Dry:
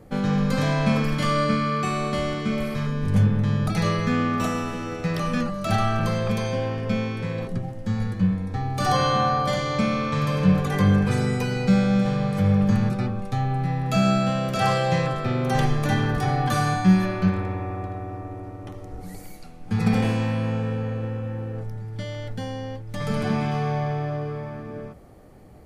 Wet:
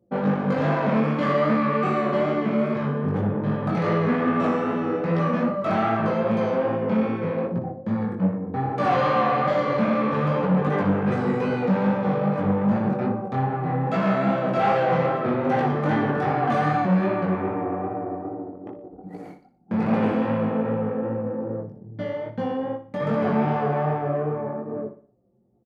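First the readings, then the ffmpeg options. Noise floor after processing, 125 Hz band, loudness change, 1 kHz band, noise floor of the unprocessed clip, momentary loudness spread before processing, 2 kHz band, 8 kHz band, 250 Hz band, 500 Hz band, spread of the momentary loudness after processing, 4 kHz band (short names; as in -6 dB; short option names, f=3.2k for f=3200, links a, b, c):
-46 dBFS, -4.0 dB, +0.5 dB, +2.5 dB, -38 dBFS, 13 LU, -0.5 dB, under -15 dB, +0.5 dB, +4.5 dB, 9 LU, -9.0 dB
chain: -af "aemphasis=mode=production:type=bsi,anlmdn=2.51,tiltshelf=f=1.2k:g=8,acontrast=30,asoftclip=type=tanh:threshold=-16.5dB,flanger=delay=17:depth=5.6:speed=2.5,highpass=170,lowpass=2.2k,aecho=1:1:60|120|180|240:0.266|0.109|0.0447|0.0183,volume=3dB"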